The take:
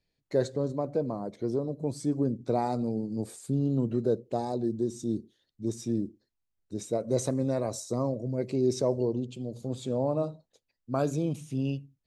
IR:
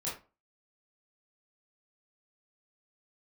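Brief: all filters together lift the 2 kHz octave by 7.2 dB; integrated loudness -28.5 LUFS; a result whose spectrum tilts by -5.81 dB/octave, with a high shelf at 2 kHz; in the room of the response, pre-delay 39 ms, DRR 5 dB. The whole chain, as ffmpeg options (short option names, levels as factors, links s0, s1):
-filter_complex "[0:a]highshelf=f=2000:g=8.5,equalizer=f=2000:t=o:g=4.5,asplit=2[s0][s1];[1:a]atrim=start_sample=2205,adelay=39[s2];[s1][s2]afir=irnorm=-1:irlink=0,volume=0.422[s3];[s0][s3]amix=inputs=2:normalize=0"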